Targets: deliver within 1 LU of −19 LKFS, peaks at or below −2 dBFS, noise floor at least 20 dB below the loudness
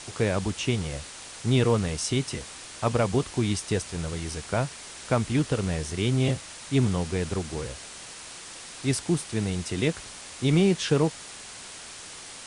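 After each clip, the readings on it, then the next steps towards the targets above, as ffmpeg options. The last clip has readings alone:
background noise floor −43 dBFS; target noise floor −47 dBFS; integrated loudness −27.0 LKFS; sample peak −10.5 dBFS; target loudness −19.0 LKFS
→ -af "afftdn=noise_reduction=6:noise_floor=-43"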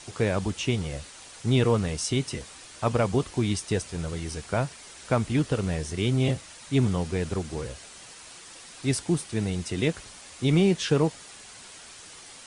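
background noise floor −47 dBFS; integrated loudness −27.0 LKFS; sample peak −10.5 dBFS; target loudness −19.0 LKFS
→ -af "volume=8dB"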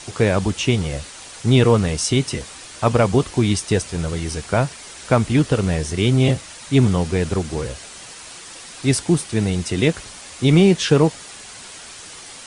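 integrated loudness −19.0 LKFS; sample peak −2.5 dBFS; background noise floor −39 dBFS

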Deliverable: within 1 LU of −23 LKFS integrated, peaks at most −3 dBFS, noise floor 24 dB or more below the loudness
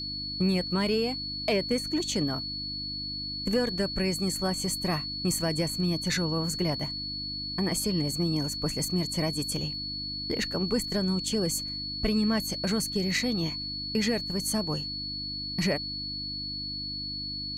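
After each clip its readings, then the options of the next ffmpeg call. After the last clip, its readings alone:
mains hum 50 Hz; hum harmonics up to 300 Hz; level of the hum −40 dBFS; interfering tone 4,400 Hz; level of the tone −33 dBFS; integrated loudness −29.0 LKFS; sample peak −15.5 dBFS; target loudness −23.0 LKFS
→ -af "bandreject=frequency=50:width_type=h:width=4,bandreject=frequency=100:width_type=h:width=4,bandreject=frequency=150:width_type=h:width=4,bandreject=frequency=200:width_type=h:width=4,bandreject=frequency=250:width_type=h:width=4,bandreject=frequency=300:width_type=h:width=4"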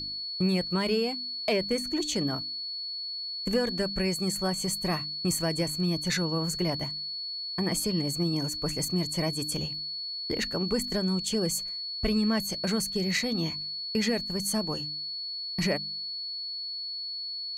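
mains hum none found; interfering tone 4,400 Hz; level of the tone −33 dBFS
→ -af "bandreject=frequency=4400:width=30"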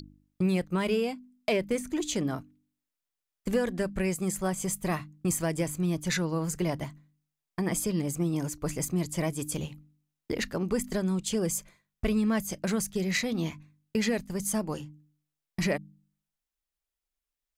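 interfering tone none found; integrated loudness −30.5 LKFS; sample peak −16.0 dBFS; target loudness −23.0 LKFS
→ -af "volume=7.5dB"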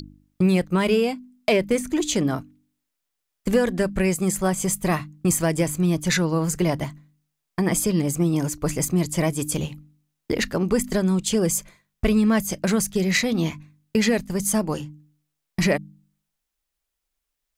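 integrated loudness −23.0 LKFS; sample peak −8.5 dBFS; background noise floor −81 dBFS

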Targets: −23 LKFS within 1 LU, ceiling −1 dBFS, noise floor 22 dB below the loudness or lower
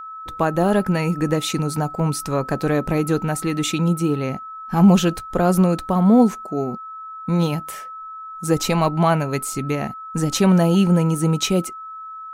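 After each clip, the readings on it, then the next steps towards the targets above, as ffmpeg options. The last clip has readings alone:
interfering tone 1,300 Hz; level of the tone −32 dBFS; integrated loudness −20.0 LKFS; sample peak −4.0 dBFS; target loudness −23.0 LKFS
→ -af "bandreject=frequency=1300:width=30"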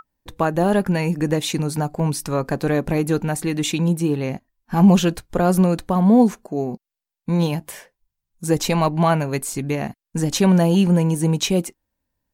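interfering tone none found; integrated loudness −20.0 LKFS; sample peak −4.0 dBFS; target loudness −23.0 LKFS
→ -af "volume=-3dB"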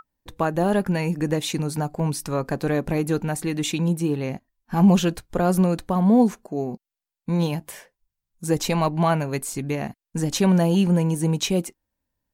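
integrated loudness −23.0 LKFS; sample peak −7.0 dBFS; background noise floor −87 dBFS

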